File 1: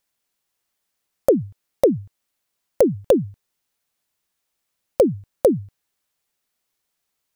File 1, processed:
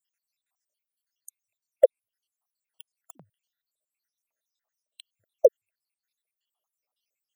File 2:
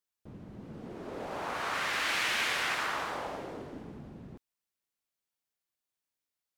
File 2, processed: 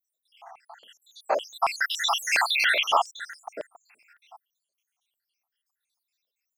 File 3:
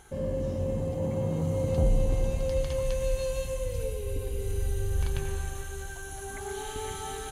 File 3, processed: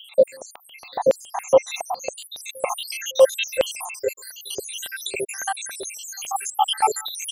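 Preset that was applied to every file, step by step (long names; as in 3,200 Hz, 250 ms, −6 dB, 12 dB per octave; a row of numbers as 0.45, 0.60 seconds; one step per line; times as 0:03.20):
time-frequency cells dropped at random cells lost 84%
auto-filter high-pass square 3.6 Hz 660–3,000 Hz
loudness normalisation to −24 LKFS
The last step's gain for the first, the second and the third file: −3.0, +13.0, +20.0 decibels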